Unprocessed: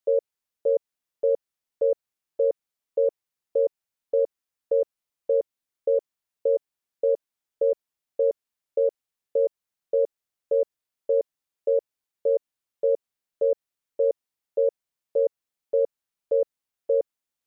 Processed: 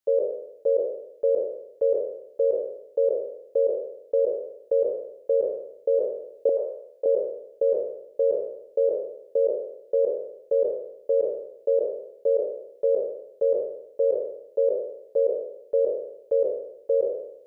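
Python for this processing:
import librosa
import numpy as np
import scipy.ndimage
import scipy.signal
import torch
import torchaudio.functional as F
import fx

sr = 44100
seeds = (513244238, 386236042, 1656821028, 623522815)

y = fx.spec_trails(x, sr, decay_s=0.79)
y = fx.cheby1_highpass(y, sr, hz=690.0, order=2, at=(6.49, 7.06))
y = fx.rider(y, sr, range_db=3, speed_s=0.5)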